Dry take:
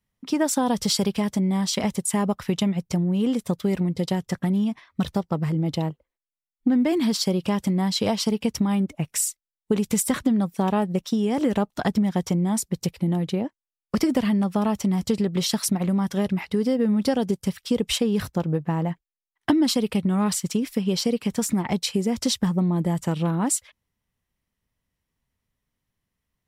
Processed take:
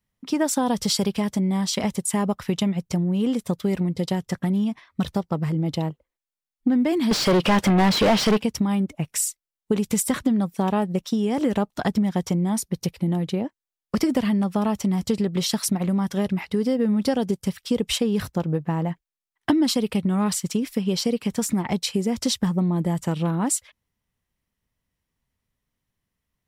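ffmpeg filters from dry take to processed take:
-filter_complex "[0:a]asettb=1/sr,asplit=3[a][b][c];[a]atrim=end=7.114[d];[b]atrim=start=7.11:end=8.42,asetpts=PTS-STARTPTS,afade=t=in:d=0.004:c=qsin,afade=t=out:st=1.306:d=0.004:c=qsin,asplit=2[e][f];[f]highpass=f=720:p=1,volume=31dB,asoftclip=type=tanh:threshold=-10dB[g];[e][g]amix=inputs=2:normalize=0,lowpass=f=1.9k:p=1,volume=-6dB[h];[c]atrim=start=8.416[i];[d][h]acrossfade=d=0.004:c1=hsin:c2=qsin[j];[j][i]acrossfade=d=0.004:c1=qsin:c2=hsin,asettb=1/sr,asplit=3[k][l][m];[k]atrim=end=12.504[n];[l]atrim=start=12.5:end=12.9,asetpts=PTS-STARTPTS,afade=t=in:d=0.004:c=qsin,afade=t=out:st=0.396:d=0.004:c=qsin,bandreject=f=7.5k:w=6.9[o];[m]atrim=start=12.896[p];[n][o]acrossfade=d=0.004:c1=hsin:c2=qsin[q];[q][p]acrossfade=d=0.004:c1=qsin:c2=hsin"

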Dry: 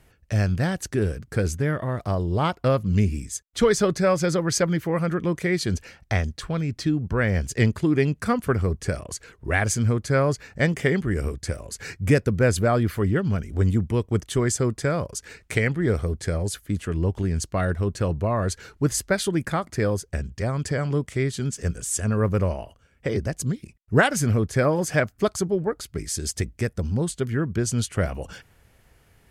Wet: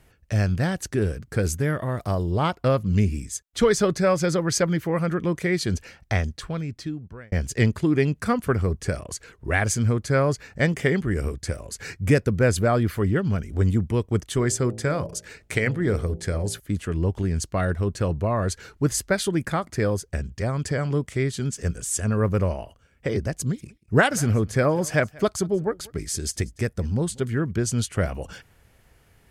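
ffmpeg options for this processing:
-filter_complex "[0:a]asettb=1/sr,asplit=3[a][b][c];[a]atrim=end=1.434[d];[b]atrim=start=1.43:end=2.31,asetpts=PTS-STARTPTS,afade=t=in:d=0.004:c=qsin,afade=t=out:st=0.876:d=0.004:c=qsin,highshelf=f=9.3k:g=11.5[e];[c]atrim=start=2.306[f];[d][e]acrossfade=d=0.004:c1=hsin:c2=qsin[g];[g][f]acrossfade=d=0.004:c1=qsin:c2=hsin,asettb=1/sr,asplit=3[h][i][j];[h]atrim=end=14.314[k];[i]atrim=start=14.31:end=16.6,asetpts=PTS-STARTPTS,afade=t=in:d=0.004:c=qsin,afade=t=out:st=2.286:d=0.004:c=qsin,bandreject=f=56.11:t=h:w=4,bandreject=f=112.22:t=h:w=4,bandreject=f=168.33:t=h:w=4,bandreject=f=224.44:t=h:w=4,bandreject=f=280.55:t=h:w=4,bandreject=f=336.66:t=h:w=4,bandreject=f=392.77:t=h:w=4,bandreject=f=448.88:t=h:w=4,bandreject=f=504.99:t=h:w=4,bandreject=f=561.1:t=h:w=4,bandreject=f=617.21:t=h:w=4,bandreject=f=673.32:t=h:w=4,bandreject=f=729.43:t=h:w=4,bandreject=f=785.54:t=h:w=4,bandreject=f=841.65:t=h:w=4[l];[j]atrim=start=16.596[m];[k][l]acrossfade=d=0.004:c1=hsin:c2=qsin[n];[n][m]acrossfade=d=0.004:c1=qsin:c2=hsin,asettb=1/sr,asplit=3[o][p][q];[o]atrim=end=23.354[r];[p]atrim=start=23.35:end=27.51,asetpts=PTS-STARTPTS,afade=t=in:d=0.004:c=qsin,afade=t=out:st=4.156:d=0.004:c=qsin,aecho=1:1:188:0.0631,atrim=end_sample=183456[s];[q]atrim=start=27.506[t];[r][s]acrossfade=d=0.004:c1=hsin:c2=qsin[u];[u][t]acrossfade=d=0.004:c1=qsin:c2=hsin,asplit=2[v][w];[v]atrim=end=7.32,asetpts=PTS-STARTPTS,afade=t=out:st=6.25:d=1.07[x];[w]atrim=start=7.32,asetpts=PTS-STARTPTS,afade=t=in:d=0.004:c=hsin[y];[x][y]concat=n=2:v=0:a=1"

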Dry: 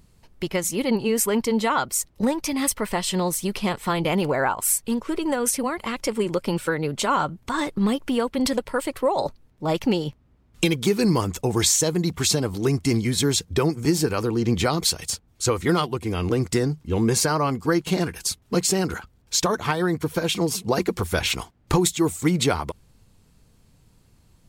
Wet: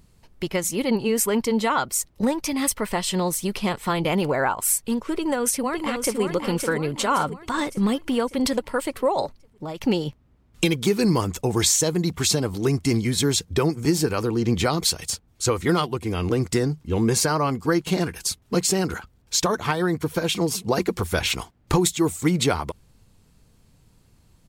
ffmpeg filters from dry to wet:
-filter_complex "[0:a]asplit=2[a][b];[b]afade=t=in:st=5.16:d=0.01,afade=t=out:st=6.21:d=0.01,aecho=0:1:560|1120|1680|2240|2800|3360:0.501187|0.250594|0.125297|0.0626484|0.0313242|0.0156621[c];[a][c]amix=inputs=2:normalize=0,asettb=1/sr,asplit=3[d][e][f];[d]atrim=end=9.254[g];[e]atrim=start=9.25:end=9.82,asetpts=PTS-STARTPTS,afade=t=in:d=0.004:c=qsin,afade=t=out:st=0.566:d=0.004:c=qsin,acompressor=threshold=-28dB:ratio=12:attack=3.2:release=140:knee=1:detection=peak[h];[f]atrim=start=9.816[i];[g][h]acrossfade=d=0.004:c1=hsin:c2=qsin[j];[j][i]acrossfade=d=0.004:c1=qsin:c2=hsin"

